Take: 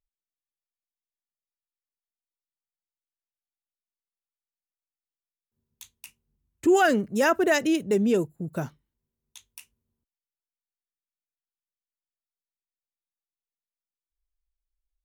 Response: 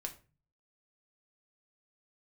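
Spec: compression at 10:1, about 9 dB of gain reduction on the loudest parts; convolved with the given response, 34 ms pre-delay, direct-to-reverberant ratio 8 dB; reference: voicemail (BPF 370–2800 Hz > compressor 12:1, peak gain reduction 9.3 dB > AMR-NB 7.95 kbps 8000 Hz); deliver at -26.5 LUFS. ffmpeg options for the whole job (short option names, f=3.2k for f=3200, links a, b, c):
-filter_complex "[0:a]acompressor=threshold=-25dB:ratio=10,asplit=2[a][b];[1:a]atrim=start_sample=2205,adelay=34[c];[b][c]afir=irnorm=-1:irlink=0,volume=-6.5dB[d];[a][d]amix=inputs=2:normalize=0,highpass=370,lowpass=2.8k,acompressor=threshold=-33dB:ratio=12,volume=13dB" -ar 8000 -c:a libopencore_amrnb -b:a 7950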